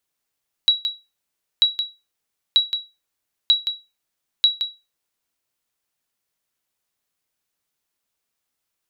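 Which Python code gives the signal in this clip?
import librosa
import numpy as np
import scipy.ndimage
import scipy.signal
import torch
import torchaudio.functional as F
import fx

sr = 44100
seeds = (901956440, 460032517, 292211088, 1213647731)

y = fx.sonar_ping(sr, hz=3890.0, decay_s=0.25, every_s=0.94, pings=5, echo_s=0.17, echo_db=-8.5, level_db=-7.0)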